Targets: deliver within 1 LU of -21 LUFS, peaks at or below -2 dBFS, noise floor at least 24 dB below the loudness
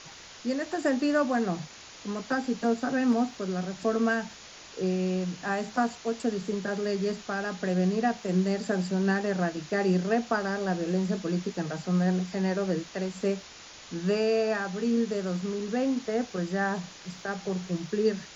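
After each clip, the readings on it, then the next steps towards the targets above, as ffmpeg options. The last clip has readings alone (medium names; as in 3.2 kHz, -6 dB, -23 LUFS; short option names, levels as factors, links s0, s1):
noise floor -48 dBFS; noise floor target -53 dBFS; loudness -29.0 LUFS; peak level -12.5 dBFS; loudness target -21.0 LUFS
-> -af "afftdn=nr=6:nf=-48"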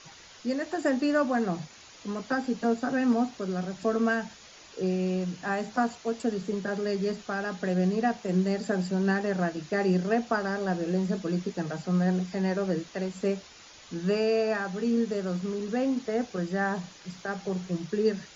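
noise floor -51 dBFS; noise floor target -53 dBFS
-> -af "afftdn=nr=6:nf=-51"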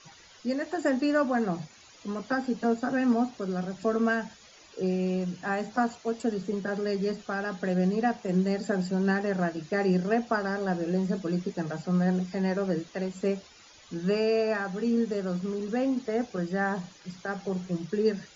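noise floor -54 dBFS; loudness -29.0 LUFS; peak level -12.5 dBFS; loudness target -21.0 LUFS
-> -af "volume=2.51"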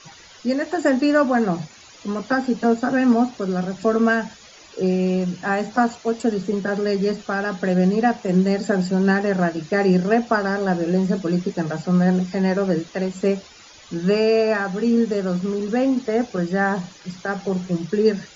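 loudness -21.0 LUFS; peak level -4.5 dBFS; noise floor -46 dBFS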